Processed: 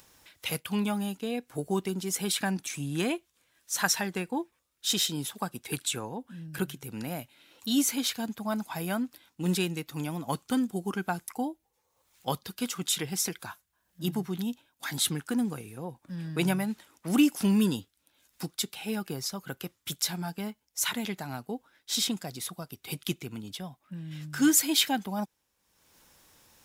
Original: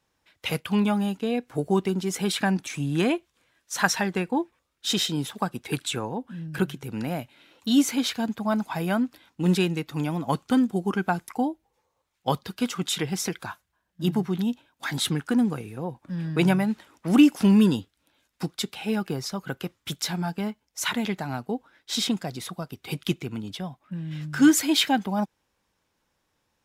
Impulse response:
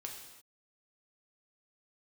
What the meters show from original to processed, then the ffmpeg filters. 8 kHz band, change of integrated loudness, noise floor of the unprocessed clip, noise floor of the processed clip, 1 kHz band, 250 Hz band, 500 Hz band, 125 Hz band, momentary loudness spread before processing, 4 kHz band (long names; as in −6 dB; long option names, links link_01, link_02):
+2.0 dB, −4.5 dB, −76 dBFS, −76 dBFS, −6.0 dB, −6.5 dB, −6.5 dB, −6.5 dB, 13 LU, −2.0 dB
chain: -af "acompressor=mode=upward:threshold=-42dB:ratio=2.5,crystalizer=i=2:c=0,volume=-6.5dB"